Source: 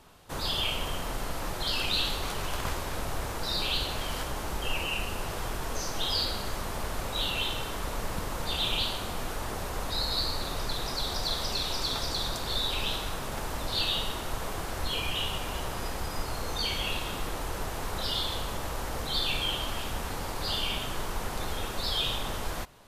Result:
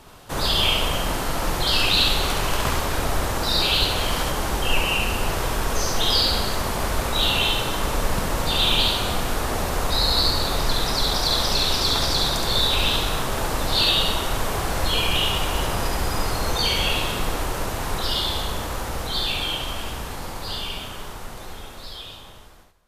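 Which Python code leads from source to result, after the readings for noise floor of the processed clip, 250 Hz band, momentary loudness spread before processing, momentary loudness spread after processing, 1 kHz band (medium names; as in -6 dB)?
-39 dBFS, +9.0 dB, 7 LU, 11 LU, +9.0 dB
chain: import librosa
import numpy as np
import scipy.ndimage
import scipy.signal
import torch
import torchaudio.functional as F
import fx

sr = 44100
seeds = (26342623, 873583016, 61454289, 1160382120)

p1 = fx.fade_out_tail(x, sr, length_s=6.54)
p2 = p1 + fx.echo_multitap(p1, sr, ms=(70, 252, 305), db=(-3.0, -14.5, -19.5), dry=0)
y = F.gain(torch.from_numpy(p2), 8.0).numpy()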